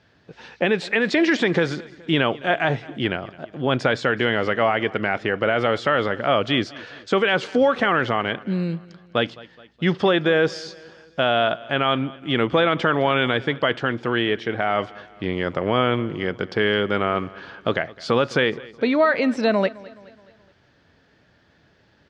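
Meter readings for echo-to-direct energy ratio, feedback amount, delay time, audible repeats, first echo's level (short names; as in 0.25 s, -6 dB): -19.5 dB, 51%, 0.211 s, 3, -21.0 dB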